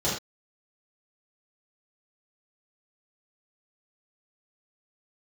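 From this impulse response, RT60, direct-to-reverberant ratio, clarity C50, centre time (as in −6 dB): non-exponential decay, −9.0 dB, 3.5 dB, 41 ms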